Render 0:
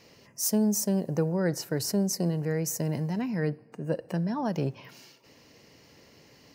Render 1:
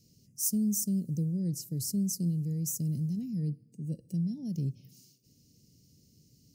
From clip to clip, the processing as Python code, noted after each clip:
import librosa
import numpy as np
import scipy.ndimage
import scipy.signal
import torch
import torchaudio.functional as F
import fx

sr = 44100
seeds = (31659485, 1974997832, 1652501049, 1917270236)

y = scipy.signal.sosfilt(scipy.signal.cheby1(2, 1.0, [170.0, 7600.0], 'bandstop', fs=sr, output='sos'), x)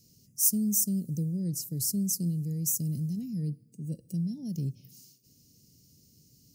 y = fx.high_shelf(x, sr, hz=6700.0, db=9.0)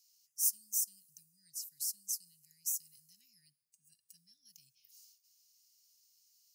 y = scipy.signal.sosfilt(scipy.signal.ellip(4, 1.0, 40, 1500.0, 'highpass', fs=sr, output='sos'), x)
y = y * librosa.db_to_amplitude(-5.5)